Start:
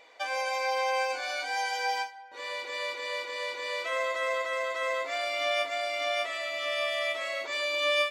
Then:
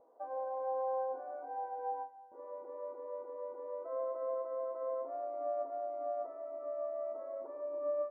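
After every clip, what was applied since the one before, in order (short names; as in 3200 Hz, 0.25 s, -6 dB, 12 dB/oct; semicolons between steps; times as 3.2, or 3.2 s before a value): Bessel low-pass 590 Hz, order 8; gain -1.5 dB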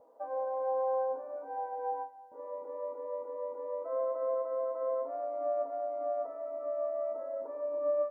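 notch comb 370 Hz; gain +5 dB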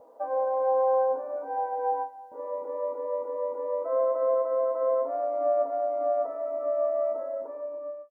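ending faded out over 1.06 s; gain +7.5 dB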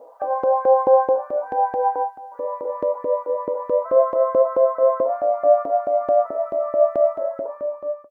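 LFO high-pass saw up 4.6 Hz 290–1700 Hz; gain +5 dB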